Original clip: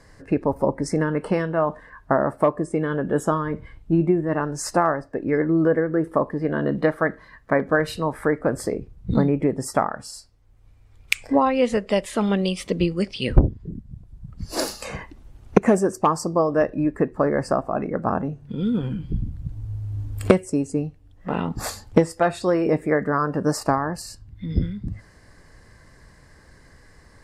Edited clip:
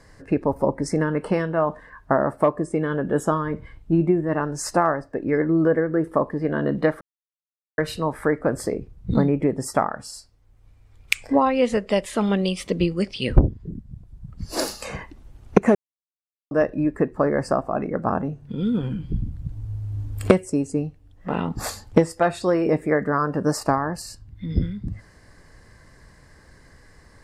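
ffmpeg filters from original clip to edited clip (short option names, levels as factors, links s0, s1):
-filter_complex "[0:a]asplit=5[s0][s1][s2][s3][s4];[s0]atrim=end=7.01,asetpts=PTS-STARTPTS,afade=t=out:st=7.006:d=0.004:c=hsin[s5];[s1]atrim=start=7.01:end=7.78,asetpts=PTS-STARTPTS,volume=0[s6];[s2]atrim=start=7.78:end=15.75,asetpts=PTS-STARTPTS,afade=t=in:d=0.004:c=hsin,afade=t=out:st=7.966:d=0.004:c=hsin[s7];[s3]atrim=start=15.75:end=16.51,asetpts=PTS-STARTPTS,volume=0[s8];[s4]atrim=start=16.51,asetpts=PTS-STARTPTS,afade=t=in:d=0.004:c=hsin[s9];[s5][s6][s7][s8][s9]concat=n=5:v=0:a=1"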